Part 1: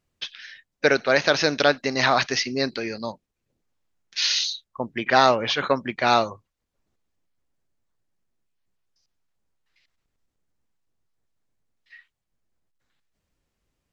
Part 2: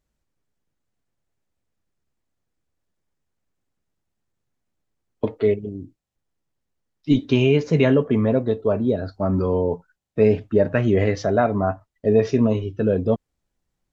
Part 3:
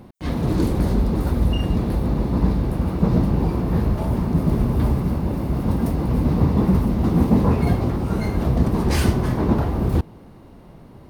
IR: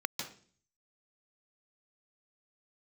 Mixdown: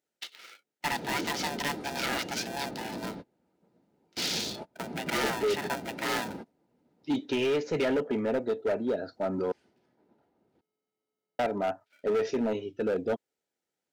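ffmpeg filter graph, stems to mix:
-filter_complex "[0:a]adynamicequalizer=threshold=0.0158:dfrequency=3100:dqfactor=0.78:tfrequency=3100:tqfactor=0.78:attack=5:release=100:ratio=0.375:range=1.5:mode=cutabove:tftype=bell,agate=range=0.355:threshold=0.00631:ratio=16:detection=peak,aeval=exprs='val(0)*sgn(sin(2*PI*430*n/s))':c=same,volume=0.398,asplit=2[s0][s1];[1:a]volume=0.596,asplit=3[s2][s3][s4];[s2]atrim=end=9.52,asetpts=PTS-STARTPTS,afade=t=out:st=9.516:d=0.004:c=hsin[s5];[s3]atrim=start=9.52:end=11.39,asetpts=PTS-STARTPTS,volume=0[s6];[s4]atrim=start=11.39,asetpts=PTS-STARTPTS,afade=t=in:d=0.004:c=hsin[s7];[s5][s6][s7]concat=n=3:v=0:a=1[s8];[2:a]lowpass=6600,adelay=600,volume=0.282[s9];[s1]apad=whole_len=515698[s10];[s9][s10]sidechaingate=range=0.0251:threshold=0.00355:ratio=16:detection=peak[s11];[s0][s8][s11]amix=inputs=3:normalize=0,highpass=300,volume=15,asoftclip=hard,volume=0.0668,asuperstop=centerf=1100:order=4:qfactor=5.2"

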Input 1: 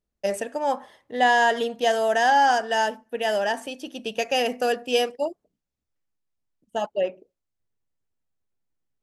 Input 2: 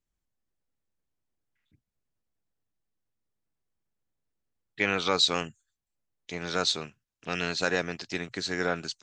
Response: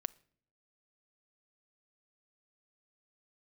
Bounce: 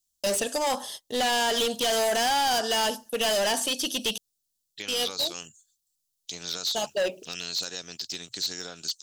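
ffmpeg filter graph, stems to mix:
-filter_complex "[0:a]agate=range=0.0501:threshold=0.00355:ratio=16:detection=peak,alimiter=limit=0.178:level=0:latency=1:release=108,volume=1.41,asplit=3[s0][s1][s2];[s0]atrim=end=4.18,asetpts=PTS-STARTPTS,afade=t=out:st=4.176:d=0.004:c=hsin[s3];[s1]atrim=start=4.18:end=4.88,asetpts=PTS-STARTPTS,volume=0[s4];[s2]atrim=start=4.88,asetpts=PTS-STARTPTS,afade=t=in:d=0.004:c=hsin[s5];[s3][s4][s5]concat=n=3:v=0:a=1[s6];[1:a]acompressor=threshold=0.0355:ratio=5,volume=0.398,asplit=2[s7][s8];[s8]apad=whole_len=398008[s9];[s6][s9]sidechaincompress=threshold=0.00355:ratio=8:attack=21:release=122[s10];[s10][s7]amix=inputs=2:normalize=0,acrossover=split=3900[s11][s12];[s12]acompressor=threshold=0.00251:ratio=4:attack=1:release=60[s13];[s11][s13]amix=inputs=2:normalize=0,aexciter=amount=12.6:drive=4:freq=3200,asoftclip=type=hard:threshold=0.075"

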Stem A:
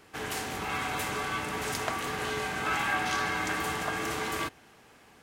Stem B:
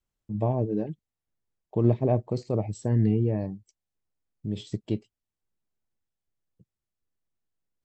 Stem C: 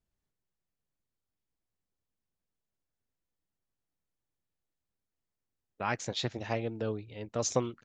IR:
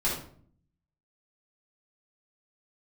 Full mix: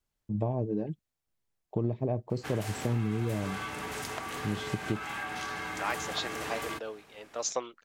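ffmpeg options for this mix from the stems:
-filter_complex "[0:a]acompressor=threshold=0.0251:ratio=6,adelay=2300,volume=0.841[s0];[1:a]volume=1.06[s1];[2:a]highpass=560,volume=1.06[s2];[s0][s1]amix=inputs=2:normalize=0,acompressor=threshold=0.0501:ratio=10,volume=1[s3];[s2][s3]amix=inputs=2:normalize=0"

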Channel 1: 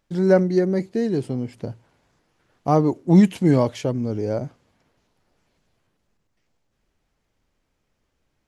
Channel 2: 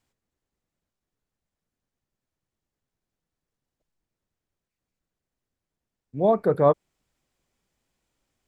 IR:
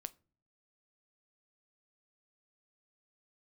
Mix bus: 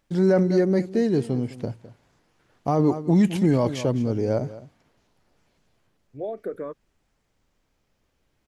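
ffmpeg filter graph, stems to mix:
-filter_complex "[0:a]volume=0.891,asplit=3[s0][s1][s2];[s1]volume=0.398[s3];[s2]volume=0.188[s4];[1:a]acompressor=threshold=0.0708:ratio=6,asplit=2[s5][s6];[s6]afreqshift=-0.47[s7];[s5][s7]amix=inputs=2:normalize=1,volume=0.708[s8];[2:a]atrim=start_sample=2205[s9];[s3][s9]afir=irnorm=-1:irlink=0[s10];[s4]aecho=0:1:208:1[s11];[s0][s8][s10][s11]amix=inputs=4:normalize=0,alimiter=limit=0.282:level=0:latency=1:release=15"

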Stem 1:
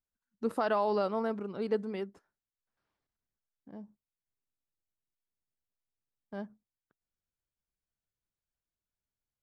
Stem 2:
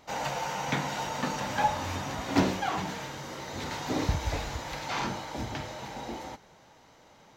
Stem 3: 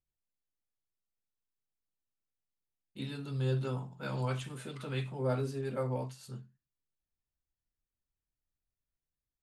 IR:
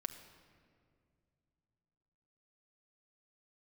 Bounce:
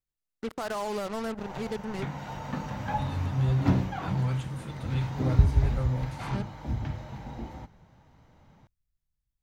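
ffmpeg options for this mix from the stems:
-filter_complex "[0:a]highshelf=f=4400:g=3.5,alimiter=limit=0.0668:level=0:latency=1:release=54,acrusher=bits=5:mix=0:aa=0.5,volume=0.944,asplit=3[s0][s1][s2];[s1]volume=0.0841[s3];[1:a]equalizer=f=7600:w=0.33:g=-11.5,adelay=1300,volume=0.708[s4];[2:a]volume=0.794[s5];[s2]apad=whole_len=382331[s6];[s4][s6]sidechaincompress=threshold=0.0178:ratio=8:attack=16:release=864[s7];[3:a]atrim=start_sample=2205[s8];[s3][s8]afir=irnorm=-1:irlink=0[s9];[s0][s7][s5][s9]amix=inputs=4:normalize=0,asubboost=boost=5:cutoff=180"

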